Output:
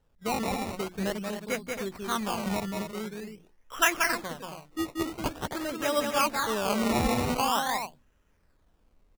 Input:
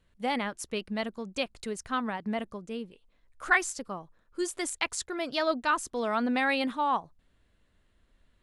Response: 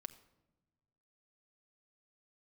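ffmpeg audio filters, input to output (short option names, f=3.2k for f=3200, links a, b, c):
-filter_complex "[0:a]asetrate=40517,aresample=44100,lowpass=4.4k,bandreject=f=60:t=h:w=6,bandreject=f=120:t=h:w=6,bandreject=f=180:t=h:w=6,bandreject=f=240:t=h:w=6,bandreject=f=300:t=h:w=6,bandreject=f=360:t=h:w=6,asplit=2[a][b];[b]aecho=0:1:183.7|271.1:0.631|0.398[c];[a][c]amix=inputs=2:normalize=0,acrusher=samples=19:mix=1:aa=0.000001:lfo=1:lforange=19:lforate=0.46"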